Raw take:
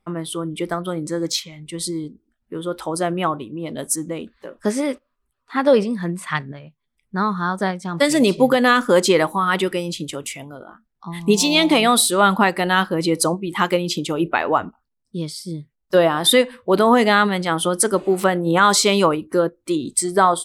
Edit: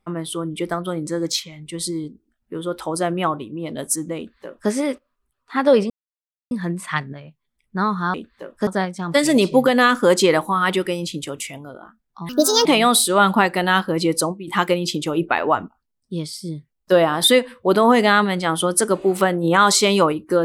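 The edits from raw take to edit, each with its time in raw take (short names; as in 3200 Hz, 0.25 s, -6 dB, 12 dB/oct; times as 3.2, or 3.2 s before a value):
4.17–4.7 copy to 7.53
5.9 insert silence 0.61 s
11.15–11.68 speed 146%
13.16–13.5 fade out, to -9 dB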